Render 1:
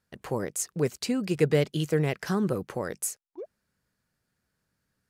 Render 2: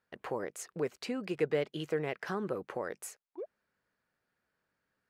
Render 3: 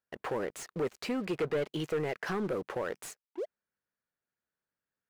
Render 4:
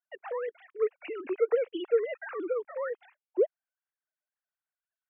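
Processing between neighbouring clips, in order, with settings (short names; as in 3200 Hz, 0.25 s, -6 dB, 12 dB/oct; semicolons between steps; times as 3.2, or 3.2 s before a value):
tone controls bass -13 dB, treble -14 dB; in parallel at +3 dB: compressor, threshold -38 dBFS, peak gain reduction 17.5 dB; on the sum: gain -7 dB
sample leveller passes 3; slew limiter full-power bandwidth 120 Hz; gain -6 dB
sine-wave speech; gain +3.5 dB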